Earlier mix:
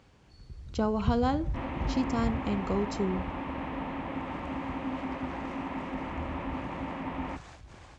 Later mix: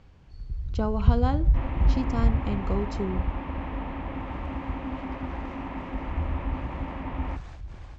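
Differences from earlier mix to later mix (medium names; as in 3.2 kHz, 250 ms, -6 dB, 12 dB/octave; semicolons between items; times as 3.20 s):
first sound: remove high-pass 230 Hz 6 dB/octave; master: add distance through air 70 m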